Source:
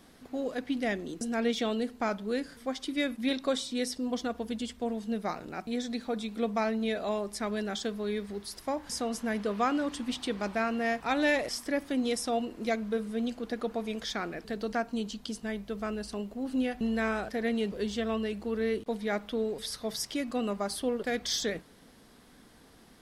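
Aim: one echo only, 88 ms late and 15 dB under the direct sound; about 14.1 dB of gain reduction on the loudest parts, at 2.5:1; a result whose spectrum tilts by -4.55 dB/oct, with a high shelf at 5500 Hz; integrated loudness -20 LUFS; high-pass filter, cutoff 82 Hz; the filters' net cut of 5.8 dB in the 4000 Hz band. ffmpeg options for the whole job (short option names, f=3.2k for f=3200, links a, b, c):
-af "highpass=82,equalizer=f=4k:t=o:g=-4,highshelf=f=5.5k:g=-8,acompressor=threshold=-47dB:ratio=2.5,aecho=1:1:88:0.178,volume=25dB"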